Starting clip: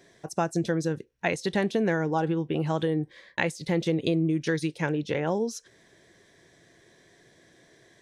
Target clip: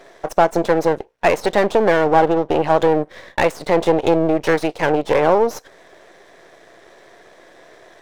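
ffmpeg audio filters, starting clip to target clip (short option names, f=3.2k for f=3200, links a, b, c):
-filter_complex "[0:a]asplit=2[a][b];[b]highpass=f=720:p=1,volume=16dB,asoftclip=type=tanh:threshold=-9dB[c];[a][c]amix=inputs=2:normalize=0,lowpass=f=4.4k:p=1,volume=-6dB,aeval=exprs='max(val(0),0)':c=same,equalizer=f=620:w=0.61:g=14,volume=1.5dB"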